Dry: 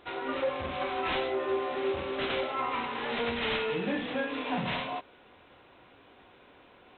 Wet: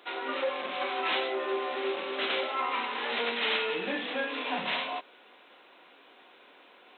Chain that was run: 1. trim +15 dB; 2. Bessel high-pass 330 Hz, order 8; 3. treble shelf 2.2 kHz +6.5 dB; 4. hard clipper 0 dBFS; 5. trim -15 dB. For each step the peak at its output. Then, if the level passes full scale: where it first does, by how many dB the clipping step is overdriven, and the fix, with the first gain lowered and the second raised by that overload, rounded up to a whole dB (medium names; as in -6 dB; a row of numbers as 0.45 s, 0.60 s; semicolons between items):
-5.0 dBFS, -5.5 dBFS, -2.5 dBFS, -2.5 dBFS, -17.5 dBFS; nothing clips